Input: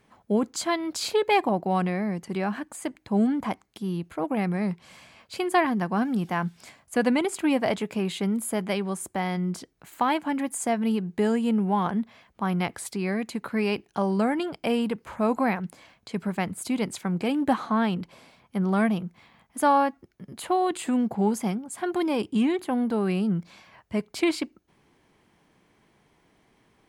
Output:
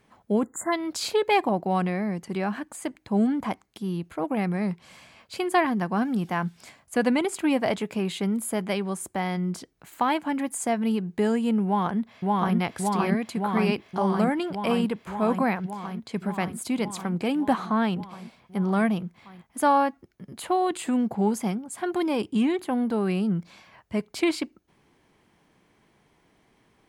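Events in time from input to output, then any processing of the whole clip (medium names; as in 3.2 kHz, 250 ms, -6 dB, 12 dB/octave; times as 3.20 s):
0.43–0.72 s: spectral selection erased 2.1–6.8 kHz
11.65–12.57 s: echo throw 570 ms, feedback 80%, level 0 dB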